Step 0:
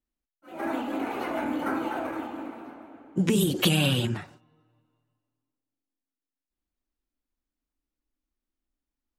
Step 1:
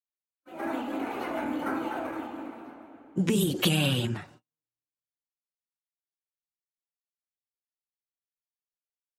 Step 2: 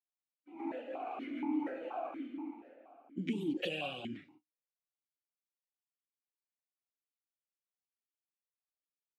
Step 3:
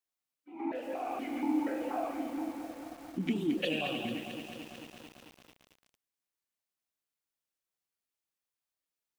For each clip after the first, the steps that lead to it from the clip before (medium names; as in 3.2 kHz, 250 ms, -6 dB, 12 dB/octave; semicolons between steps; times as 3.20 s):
gate -52 dBFS, range -36 dB; trim -2 dB
stepped vowel filter 4.2 Hz; trim +1.5 dB
bit-crushed delay 222 ms, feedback 80%, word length 9-bit, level -8.5 dB; trim +4 dB